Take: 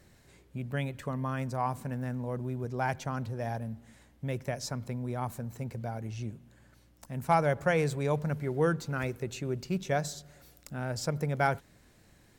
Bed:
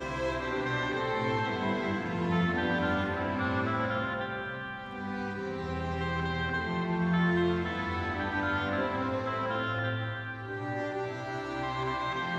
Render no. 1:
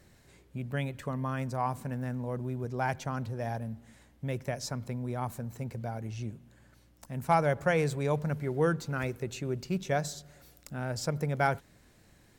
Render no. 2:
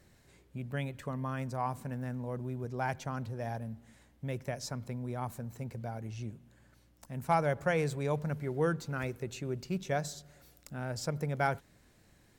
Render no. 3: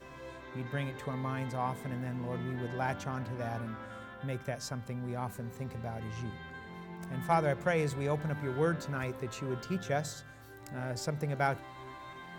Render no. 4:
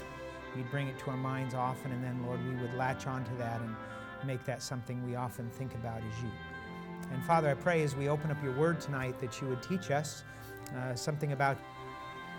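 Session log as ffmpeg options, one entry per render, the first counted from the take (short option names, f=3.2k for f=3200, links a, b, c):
-af anull
-af "volume=-3dB"
-filter_complex "[1:a]volume=-15dB[a];[0:a][a]amix=inputs=2:normalize=0"
-af "acompressor=mode=upward:threshold=-39dB:ratio=2.5"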